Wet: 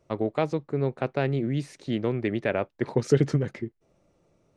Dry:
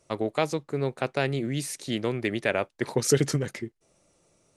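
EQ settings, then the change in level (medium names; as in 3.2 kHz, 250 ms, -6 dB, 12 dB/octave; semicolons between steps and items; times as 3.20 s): tape spacing loss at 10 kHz 21 dB; bass shelf 470 Hz +3.5 dB; 0.0 dB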